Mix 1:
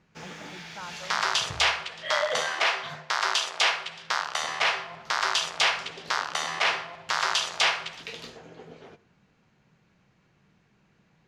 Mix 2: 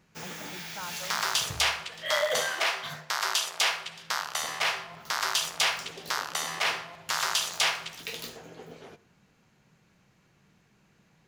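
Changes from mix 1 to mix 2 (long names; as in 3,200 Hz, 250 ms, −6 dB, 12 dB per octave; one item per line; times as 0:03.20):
second sound −4.5 dB
master: remove high-frequency loss of the air 91 metres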